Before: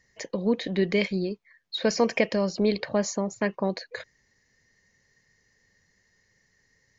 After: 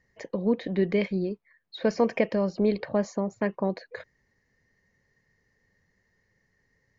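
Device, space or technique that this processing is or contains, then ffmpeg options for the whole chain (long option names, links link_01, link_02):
through cloth: -af "highshelf=frequency=3300:gain=-17"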